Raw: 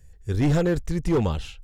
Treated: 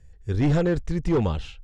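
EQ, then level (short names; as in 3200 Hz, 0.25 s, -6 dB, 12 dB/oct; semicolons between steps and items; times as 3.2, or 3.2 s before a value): air absorption 73 m; 0.0 dB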